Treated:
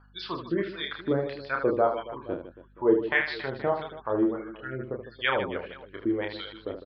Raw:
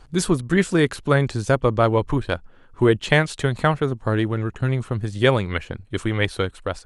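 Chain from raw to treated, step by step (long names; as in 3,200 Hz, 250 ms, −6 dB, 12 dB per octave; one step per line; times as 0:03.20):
gate on every frequency bin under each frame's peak −30 dB strong
downsampling to 11,025 Hz
auto-filter band-pass sine 1.6 Hz 310–4,200 Hz
reverse bouncing-ball delay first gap 30 ms, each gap 1.6×, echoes 5
mains hum 50 Hz, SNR 28 dB
level −1.5 dB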